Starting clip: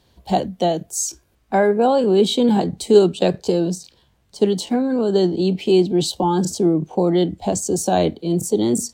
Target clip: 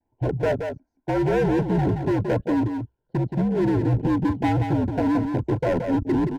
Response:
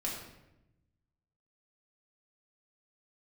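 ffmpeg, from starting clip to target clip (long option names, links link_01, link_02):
-af "afftfilt=real='re*pow(10,10/40*sin(2*PI*(0.72*log(max(b,1)*sr/1024/100)/log(2)-(0.83)*(pts-256)/sr)))':imag='im*pow(10,10/40*sin(2*PI*(0.72*log(max(b,1)*sr/1024/100)/log(2)-(0.83)*(pts-256)/sr)))':win_size=1024:overlap=0.75,afwtdn=0.126,lowpass=frequency=1600:width=0.5412,lowpass=frequency=1600:width=1.3066,lowshelf=frequency=74:gain=-5.5,alimiter=limit=-9.5dB:level=0:latency=1:release=13,atempo=1.4,asoftclip=type=hard:threshold=-19dB,afreqshift=-64,asuperstop=centerf=1200:order=20:qfactor=4.4,aecho=1:1:174:0.473"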